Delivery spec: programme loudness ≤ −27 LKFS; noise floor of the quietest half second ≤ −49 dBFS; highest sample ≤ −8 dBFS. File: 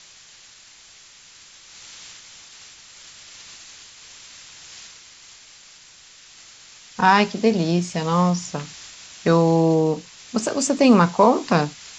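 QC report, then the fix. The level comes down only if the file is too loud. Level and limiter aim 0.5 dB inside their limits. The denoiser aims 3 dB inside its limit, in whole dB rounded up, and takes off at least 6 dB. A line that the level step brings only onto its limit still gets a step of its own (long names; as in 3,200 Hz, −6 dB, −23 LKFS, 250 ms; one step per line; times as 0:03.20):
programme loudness −19.5 LKFS: out of spec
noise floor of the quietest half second −48 dBFS: out of spec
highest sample −3.0 dBFS: out of spec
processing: level −8 dB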